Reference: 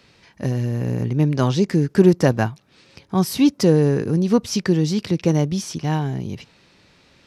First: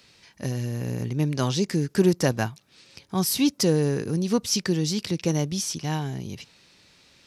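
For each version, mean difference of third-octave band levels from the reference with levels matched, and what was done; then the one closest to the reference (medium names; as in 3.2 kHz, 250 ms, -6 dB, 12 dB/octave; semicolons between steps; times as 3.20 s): 3.0 dB: treble shelf 3.1 kHz +12 dB; trim -6.5 dB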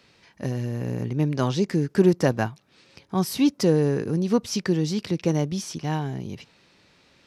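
1.0 dB: bass shelf 140 Hz -5 dB; trim -3.5 dB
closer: second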